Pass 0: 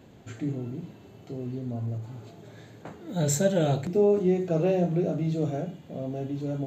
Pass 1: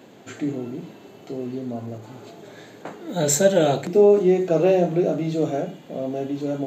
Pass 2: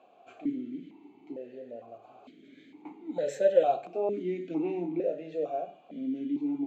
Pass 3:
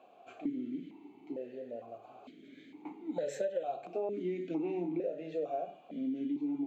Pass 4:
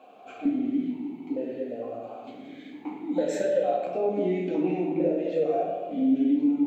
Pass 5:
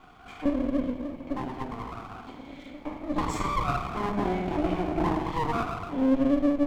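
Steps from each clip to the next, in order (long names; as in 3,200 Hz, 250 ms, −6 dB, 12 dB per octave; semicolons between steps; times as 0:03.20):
high-pass filter 250 Hz 12 dB per octave; level +8 dB
formant filter that steps through the vowels 2.2 Hz
downward compressor 10 to 1, threshold −31 dBFS, peak gain reduction 15.5 dB
convolution reverb RT60 1.4 s, pre-delay 4 ms, DRR −1.5 dB; level +6 dB
lower of the sound and its delayed copy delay 0.91 ms; level +1.5 dB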